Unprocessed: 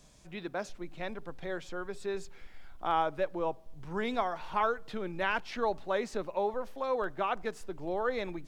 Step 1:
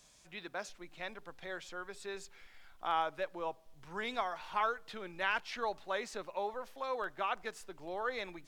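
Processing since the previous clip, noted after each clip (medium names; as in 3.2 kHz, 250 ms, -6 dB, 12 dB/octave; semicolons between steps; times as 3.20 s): tilt shelf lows -6.5 dB, about 640 Hz; trim -6 dB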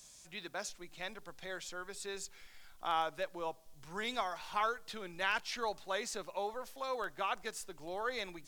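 tone controls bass +2 dB, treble +10 dB; trim -1 dB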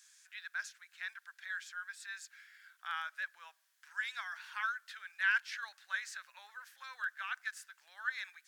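ladder high-pass 1.5 kHz, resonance 75%; trim +5.5 dB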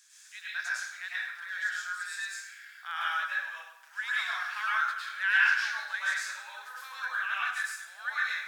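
plate-style reverb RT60 0.83 s, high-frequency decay 0.8×, pre-delay 90 ms, DRR -7.5 dB; trim +1.5 dB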